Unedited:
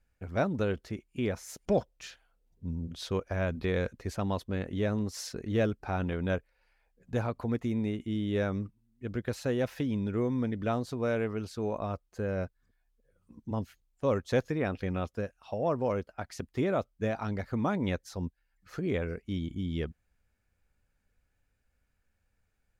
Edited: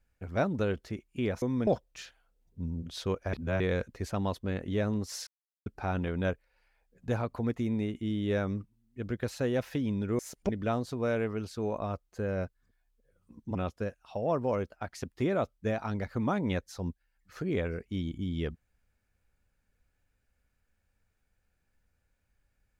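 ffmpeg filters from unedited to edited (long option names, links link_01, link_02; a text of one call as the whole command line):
ffmpeg -i in.wav -filter_complex "[0:a]asplit=10[link_01][link_02][link_03][link_04][link_05][link_06][link_07][link_08][link_09][link_10];[link_01]atrim=end=1.422[link_11];[link_02]atrim=start=10.238:end=10.492[link_12];[link_03]atrim=start=1.718:end=3.382[link_13];[link_04]atrim=start=3.378:end=3.652,asetpts=PTS-STARTPTS,areverse[link_14];[link_05]atrim=start=3.648:end=5.32,asetpts=PTS-STARTPTS,afade=type=out:start_time=1.668:duration=0.004:curve=hsin[link_15];[link_06]atrim=start=5.32:end=5.71,asetpts=PTS-STARTPTS,volume=0[link_16];[link_07]atrim=start=5.71:end=10.242,asetpts=PTS-STARTPTS,afade=type=in:duration=0.004:curve=hsin[link_17];[link_08]atrim=start=1.418:end=1.722[link_18];[link_09]atrim=start=10.488:end=13.552[link_19];[link_10]atrim=start=14.918[link_20];[link_11][link_12]acrossfade=duration=0.004:curve1=hsin:curve2=hsin[link_21];[link_21][link_13]acrossfade=duration=0.004:curve1=hsin:curve2=hsin[link_22];[link_22][link_14]acrossfade=duration=0.004:curve1=hsin:curve2=hsin[link_23];[link_15][link_16][link_17]concat=n=3:v=0:a=1[link_24];[link_23][link_24]acrossfade=duration=0.004:curve1=hsin:curve2=hsin[link_25];[link_25][link_18]acrossfade=duration=0.004:curve1=hsin:curve2=hsin[link_26];[link_26][link_19]acrossfade=duration=0.004:curve1=hsin:curve2=hsin[link_27];[link_27][link_20]acrossfade=duration=0.004:curve1=hsin:curve2=hsin" out.wav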